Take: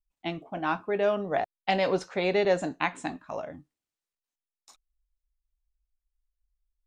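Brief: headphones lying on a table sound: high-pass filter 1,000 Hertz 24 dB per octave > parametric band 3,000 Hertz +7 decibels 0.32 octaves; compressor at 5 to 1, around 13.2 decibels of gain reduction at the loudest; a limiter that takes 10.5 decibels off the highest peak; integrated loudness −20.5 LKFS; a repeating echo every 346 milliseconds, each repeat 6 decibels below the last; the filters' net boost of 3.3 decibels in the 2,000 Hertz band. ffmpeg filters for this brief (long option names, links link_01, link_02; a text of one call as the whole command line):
ffmpeg -i in.wav -af "equalizer=frequency=2000:width_type=o:gain=3,acompressor=threshold=-35dB:ratio=5,alimiter=level_in=4.5dB:limit=-24dB:level=0:latency=1,volume=-4.5dB,highpass=frequency=1000:width=0.5412,highpass=frequency=1000:width=1.3066,equalizer=frequency=3000:width_type=o:width=0.32:gain=7,aecho=1:1:346|692|1038|1384|1730|2076:0.501|0.251|0.125|0.0626|0.0313|0.0157,volume=24dB" out.wav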